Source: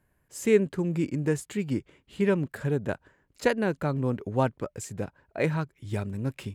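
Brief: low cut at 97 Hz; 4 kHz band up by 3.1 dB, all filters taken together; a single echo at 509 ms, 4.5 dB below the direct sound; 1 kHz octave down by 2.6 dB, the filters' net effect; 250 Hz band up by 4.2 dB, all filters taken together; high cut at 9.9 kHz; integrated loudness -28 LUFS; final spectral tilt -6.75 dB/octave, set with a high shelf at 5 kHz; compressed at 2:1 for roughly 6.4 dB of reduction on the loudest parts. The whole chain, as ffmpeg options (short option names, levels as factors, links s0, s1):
-af "highpass=97,lowpass=9900,equalizer=f=250:t=o:g=6,equalizer=f=1000:t=o:g=-4,equalizer=f=4000:t=o:g=6.5,highshelf=f=5000:g=-4.5,acompressor=threshold=0.0562:ratio=2,aecho=1:1:509:0.596,volume=1.12"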